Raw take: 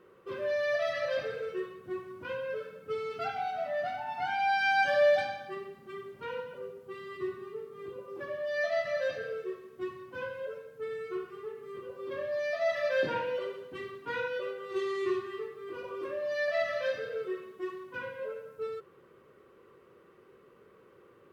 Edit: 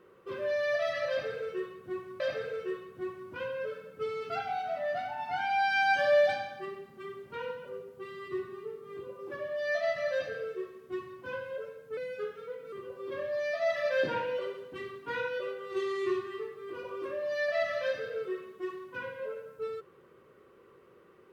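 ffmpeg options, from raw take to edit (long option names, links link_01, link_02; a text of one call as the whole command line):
ffmpeg -i in.wav -filter_complex "[0:a]asplit=4[link_01][link_02][link_03][link_04];[link_01]atrim=end=2.202[link_05];[link_02]atrim=start=1.088:end=10.864[link_06];[link_03]atrim=start=10.86:end=11.72,asetpts=PTS-STARTPTS,asetrate=50274,aresample=44100,atrim=end_sample=33268,asetpts=PTS-STARTPTS[link_07];[link_04]atrim=start=11.716[link_08];[link_05][link_06]acrossfade=duration=0.004:curve1=hsin:curve2=hsin[link_09];[link_09][link_07]acrossfade=duration=0.004:curve1=hsin:curve2=hsin[link_10];[link_10][link_08]acrossfade=duration=0.004:curve1=hsin:curve2=hsin" out.wav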